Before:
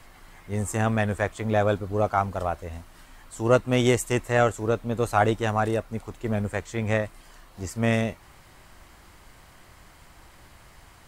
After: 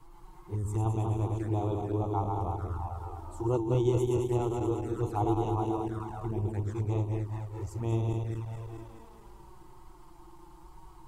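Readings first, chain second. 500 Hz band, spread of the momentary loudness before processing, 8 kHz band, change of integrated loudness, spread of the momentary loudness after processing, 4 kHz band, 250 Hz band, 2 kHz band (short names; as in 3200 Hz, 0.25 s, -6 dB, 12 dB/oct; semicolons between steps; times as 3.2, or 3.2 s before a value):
-7.5 dB, 13 LU, -14.5 dB, -6.0 dB, 10 LU, -15.5 dB, -4.5 dB, -24.0 dB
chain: regenerating reverse delay 0.107 s, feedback 78%, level -3.5 dB; low shelf 190 Hz +3.5 dB; envelope flanger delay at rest 7 ms, full sweep at -18 dBFS; in parallel at -0.5 dB: compressor, threshold -33 dBFS, peak gain reduction 19.5 dB; on the sum: EQ curve 140 Hz 0 dB, 230 Hz -13 dB, 330 Hz +8 dB, 590 Hz -14 dB, 900 Hz +7 dB, 1800 Hz -16 dB, 3100 Hz -11 dB, 13000 Hz -6 dB; gain -8.5 dB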